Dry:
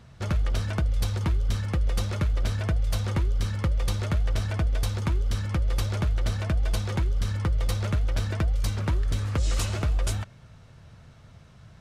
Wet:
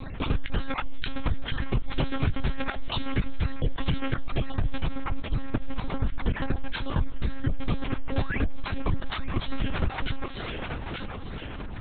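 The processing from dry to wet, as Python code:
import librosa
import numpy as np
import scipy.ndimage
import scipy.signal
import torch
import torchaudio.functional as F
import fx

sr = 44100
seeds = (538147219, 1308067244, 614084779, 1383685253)

y = fx.spec_dropout(x, sr, seeds[0], share_pct=21)
y = fx.high_shelf(y, sr, hz=2000.0, db=fx.steps((0.0, 3.0), (4.86, -9.5), (6.03, -3.0)))
y = fx.spec_paint(y, sr, seeds[1], shape='rise', start_s=8.09, length_s=0.31, low_hz=390.0, high_hz=2900.0, level_db=-40.0)
y = fx.vibrato(y, sr, rate_hz=0.95, depth_cents=90.0)
y = fx.echo_thinned(y, sr, ms=890, feedback_pct=34, hz=330.0, wet_db=-11)
y = fx.lpc_monotone(y, sr, seeds[2], pitch_hz=270.0, order=10)
y = fx.env_flatten(y, sr, amount_pct=50)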